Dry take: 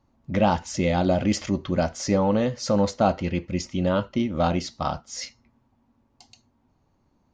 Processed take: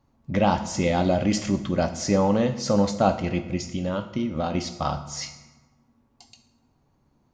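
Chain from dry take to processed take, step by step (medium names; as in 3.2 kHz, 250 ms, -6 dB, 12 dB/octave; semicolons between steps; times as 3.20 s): 3.56–4.55 s: compression 2.5:1, threshold -26 dBFS, peak gain reduction 6 dB; on a send: treble shelf 5.4 kHz +11 dB + reverberation RT60 1.2 s, pre-delay 3 ms, DRR 8.5 dB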